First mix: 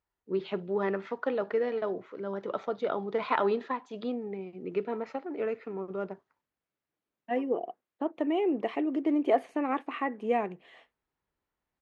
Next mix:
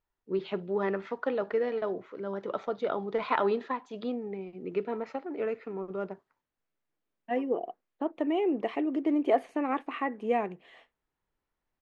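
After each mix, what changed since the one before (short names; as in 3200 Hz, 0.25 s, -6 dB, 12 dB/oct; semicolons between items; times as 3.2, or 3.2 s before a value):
master: remove HPF 42 Hz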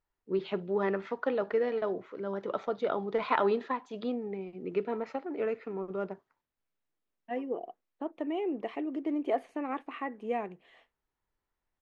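second voice -5.0 dB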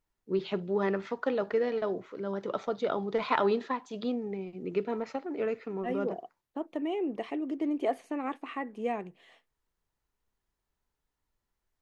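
second voice: entry -1.45 s; master: add tone controls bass +4 dB, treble +10 dB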